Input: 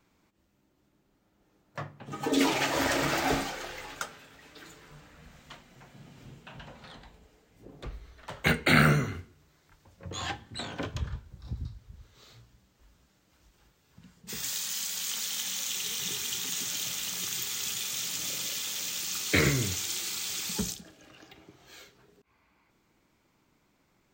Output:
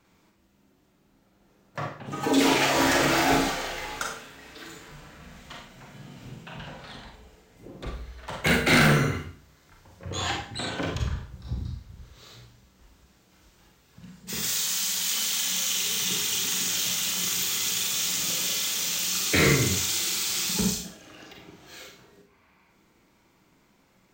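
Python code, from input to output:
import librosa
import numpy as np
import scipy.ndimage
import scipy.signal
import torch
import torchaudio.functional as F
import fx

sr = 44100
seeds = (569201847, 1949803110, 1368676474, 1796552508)

y = fx.cheby_harmonics(x, sr, harmonics=(3, 5), levels_db=(-8, -9), full_scale_db=-7.5)
y = fx.rev_schroeder(y, sr, rt60_s=0.44, comb_ms=33, drr_db=0.5)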